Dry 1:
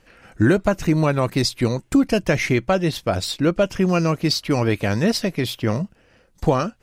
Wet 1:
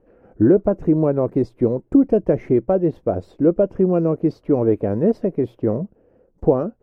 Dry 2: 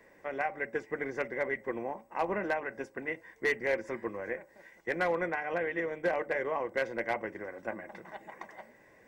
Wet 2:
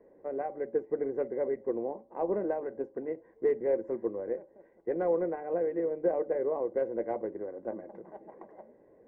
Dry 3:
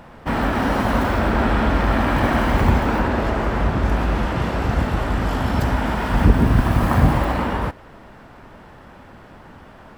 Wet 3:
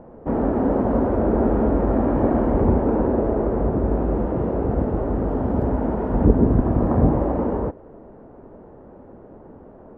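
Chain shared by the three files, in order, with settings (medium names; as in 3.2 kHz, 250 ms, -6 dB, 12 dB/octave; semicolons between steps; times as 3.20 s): FFT filter 140 Hz 0 dB, 440 Hz +10 dB, 4 kHz -29 dB; trim -3.5 dB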